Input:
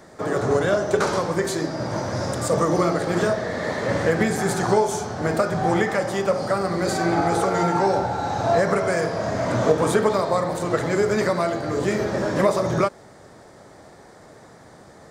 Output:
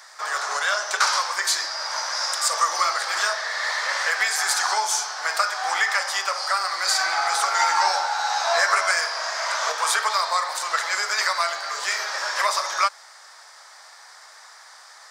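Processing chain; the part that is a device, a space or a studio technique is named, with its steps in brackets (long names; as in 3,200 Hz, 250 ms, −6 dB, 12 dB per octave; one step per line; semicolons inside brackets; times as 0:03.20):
0:07.58–0:08.92: double-tracking delay 12 ms −2 dB
headphones lying on a table (high-pass filter 1,000 Hz 24 dB per octave; parametric band 5,100 Hz +8 dB 0.56 octaves)
level +6 dB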